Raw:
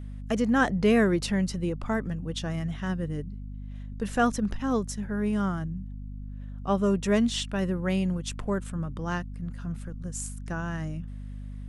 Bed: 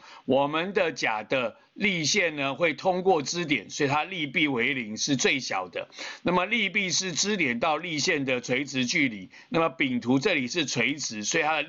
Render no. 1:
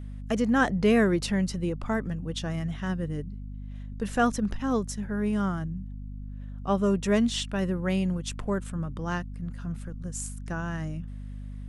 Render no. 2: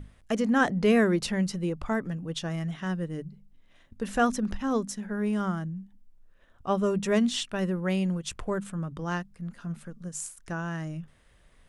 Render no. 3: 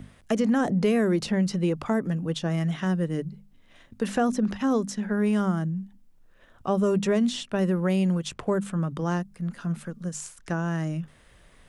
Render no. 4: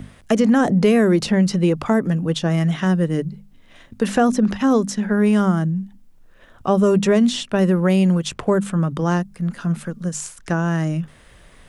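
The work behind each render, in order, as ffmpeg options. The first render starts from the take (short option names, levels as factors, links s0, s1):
-af anull
-af "bandreject=f=50:t=h:w=6,bandreject=f=100:t=h:w=6,bandreject=f=150:t=h:w=6,bandreject=f=200:t=h:w=6,bandreject=f=250:t=h:w=6"
-filter_complex "[0:a]asplit=2[s0][s1];[s1]alimiter=limit=0.0944:level=0:latency=1,volume=1.19[s2];[s0][s2]amix=inputs=2:normalize=0,acrossover=split=100|770|6300[s3][s4][s5][s6];[s3]acompressor=threshold=0.002:ratio=4[s7];[s4]acompressor=threshold=0.1:ratio=4[s8];[s5]acompressor=threshold=0.0178:ratio=4[s9];[s6]acompressor=threshold=0.00447:ratio=4[s10];[s7][s8][s9][s10]amix=inputs=4:normalize=0"
-af "volume=2.37"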